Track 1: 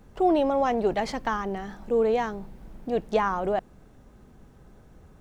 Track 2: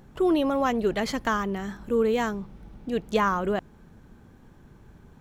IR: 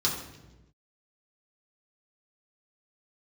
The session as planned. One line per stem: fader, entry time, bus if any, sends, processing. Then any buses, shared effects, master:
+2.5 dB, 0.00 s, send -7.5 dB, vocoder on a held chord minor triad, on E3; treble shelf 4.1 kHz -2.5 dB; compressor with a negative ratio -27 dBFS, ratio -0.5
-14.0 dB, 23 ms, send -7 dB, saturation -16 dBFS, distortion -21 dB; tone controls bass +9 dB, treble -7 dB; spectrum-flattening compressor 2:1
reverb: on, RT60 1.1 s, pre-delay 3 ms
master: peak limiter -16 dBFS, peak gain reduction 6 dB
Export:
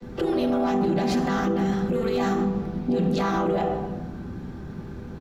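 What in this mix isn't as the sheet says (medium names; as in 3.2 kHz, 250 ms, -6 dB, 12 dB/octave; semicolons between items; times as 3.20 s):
stem 1 +2.5 dB -> +9.0 dB; stem 2 -14.0 dB -> -4.5 dB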